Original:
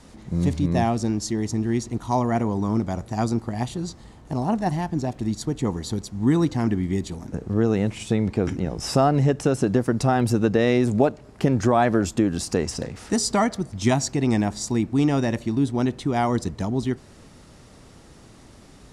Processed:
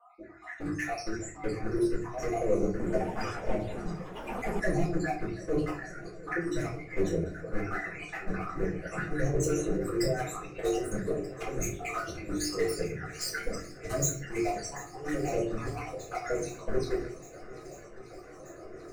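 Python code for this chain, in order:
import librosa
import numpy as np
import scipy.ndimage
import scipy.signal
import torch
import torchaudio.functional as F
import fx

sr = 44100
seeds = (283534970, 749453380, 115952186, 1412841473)

y = fx.spec_dropout(x, sr, seeds[0], share_pct=69)
y = scipy.signal.sosfilt(scipy.signal.butter(2, 210.0, 'highpass', fs=sr, output='sos'), y)
y = fx.hum_notches(y, sr, base_hz=50, count=9)
y = fx.env_lowpass(y, sr, base_hz=1200.0, full_db=-22.5)
y = fx.over_compress(y, sr, threshold_db=-29.0, ratio=-0.5)
y = np.clip(y, -10.0 ** (-30.5 / 20.0), 10.0 ** (-30.5 / 20.0))
y = fx.fixed_phaser(y, sr, hz=890.0, stages=6)
y = fx.env_flanger(y, sr, rest_ms=4.5, full_db=-36.0)
y = fx.echo_swing(y, sr, ms=1231, ratio=1.5, feedback_pct=67, wet_db=-18.5)
y = fx.room_shoebox(y, sr, seeds[1], volume_m3=34.0, walls='mixed', distance_m=2.0)
y = fx.echo_pitch(y, sr, ms=107, semitones=3, count=3, db_per_echo=-6.0, at=(2.69, 4.83))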